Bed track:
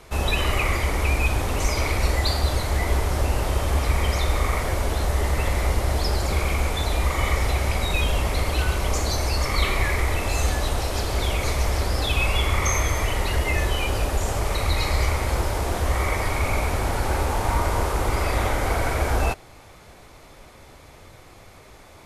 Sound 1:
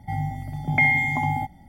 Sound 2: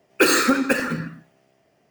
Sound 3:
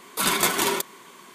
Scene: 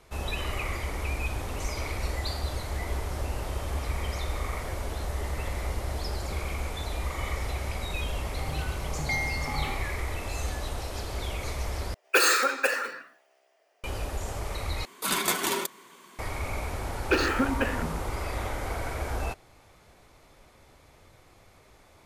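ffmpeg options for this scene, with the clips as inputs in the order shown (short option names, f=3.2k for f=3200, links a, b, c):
-filter_complex "[2:a]asplit=2[a][b];[0:a]volume=-9.5dB[c];[a]highpass=f=480:w=0.5412,highpass=f=480:w=1.3066[d];[3:a]acrusher=bits=7:mode=log:mix=0:aa=0.000001[e];[b]afwtdn=0.0631[f];[c]asplit=3[g][h][i];[g]atrim=end=11.944[j];[d]atrim=end=1.9,asetpts=PTS-STARTPTS,volume=-2.5dB[k];[h]atrim=start=13.836:end=14.854[l];[e]atrim=end=1.34,asetpts=PTS-STARTPTS,volume=-5dB[m];[i]atrim=start=16.186[n];[1:a]atrim=end=1.68,asetpts=PTS-STARTPTS,volume=-11.5dB,afade=t=in:d=0.004:c=hsin,afade=t=out:st=1.676:d=0.004:c=hsin,adelay=8310[o];[f]atrim=end=1.9,asetpts=PTS-STARTPTS,volume=-7.5dB,afade=t=in:d=0.004:c=hsin,afade=t=out:st=1.896:d=0.004:c=hsin,adelay=16910[p];[j][k]acrossfade=d=0.004:c1=hsin:c2=hsin[q];[q][l]acrossfade=d=0.004:c1=hsin:c2=hsin[r];[r][m]acrossfade=d=0.004:c1=hsin:c2=hsin[s];[s][n]acrossfade=d=0.004:c1=hsin:c2=hsin[t];[t][o][p]amix=inputs=3:normalize=0"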